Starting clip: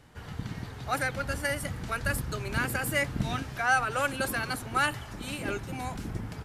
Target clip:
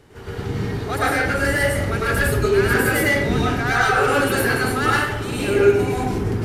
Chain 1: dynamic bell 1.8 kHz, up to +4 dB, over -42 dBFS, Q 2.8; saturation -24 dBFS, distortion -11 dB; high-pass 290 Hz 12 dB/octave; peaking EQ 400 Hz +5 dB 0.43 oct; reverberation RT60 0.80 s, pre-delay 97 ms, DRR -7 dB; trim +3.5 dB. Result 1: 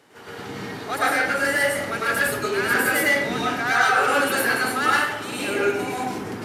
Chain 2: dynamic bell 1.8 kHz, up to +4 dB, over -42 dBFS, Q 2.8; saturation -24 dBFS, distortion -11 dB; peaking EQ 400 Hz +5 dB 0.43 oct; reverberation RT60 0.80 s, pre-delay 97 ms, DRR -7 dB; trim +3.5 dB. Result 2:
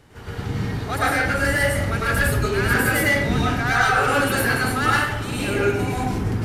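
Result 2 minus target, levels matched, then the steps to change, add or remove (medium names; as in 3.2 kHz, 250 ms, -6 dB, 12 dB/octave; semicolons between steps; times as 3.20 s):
500 Hz band -4.0 dB
change: peaking EQ 400 Hz +13 dB 0.43 oct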